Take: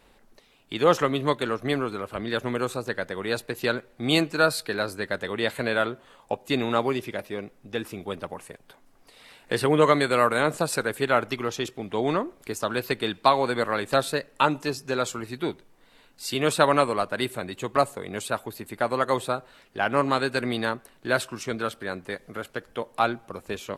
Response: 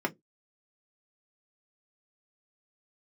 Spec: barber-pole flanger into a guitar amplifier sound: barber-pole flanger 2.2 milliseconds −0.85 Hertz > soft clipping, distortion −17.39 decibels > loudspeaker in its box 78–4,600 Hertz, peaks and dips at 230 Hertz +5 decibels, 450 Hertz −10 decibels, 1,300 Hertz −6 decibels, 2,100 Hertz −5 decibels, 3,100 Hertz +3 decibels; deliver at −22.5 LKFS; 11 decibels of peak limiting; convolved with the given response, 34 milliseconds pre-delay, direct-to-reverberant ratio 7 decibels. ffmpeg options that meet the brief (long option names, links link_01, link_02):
-filter_complex "[0:a]alimiter=limit=-15dB:level=0:latency=1,asplit=2[link_01][link_02];[1:a]atrim=start_sample=2205,adelay=34[link_03];[link_02][link_03]afir=irnorm=-1:irlink=0,volume=-15dB[link_04];[link_01][link_04]amix=inputs=2:normalize=0,asplit=2[link_05][link_06];[link_06]adelay=2.2,afreqshift=-0.85[link_07];[link_05][link_07]amix=inputs=2:normalize=1,asoftclip=threshold=-22dB,highpass=78,equalizer=frequency=230:width_type=q:width=4:gain=5,equalizer=frequency=450:width_type=q:width=4:gain=-10,equalizer=frequency=1300:width_type=q:width=4:gain=-6,equalizer=frequency=2100:width_type=q:width=4:gain=-5,equalizer=frequency=3100:width_type=q:width=4:gain=3,lowpass=frequency=4600:width=0.5412,lowpass=frequency=4600:width=1.3066,volume=11.5dB"